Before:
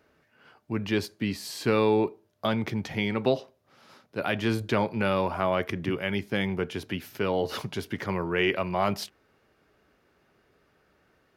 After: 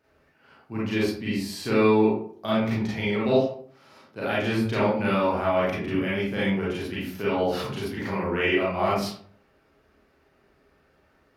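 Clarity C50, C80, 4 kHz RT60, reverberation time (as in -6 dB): 0.0 dB, 6.0 dB, 0.30 s, 0.55 s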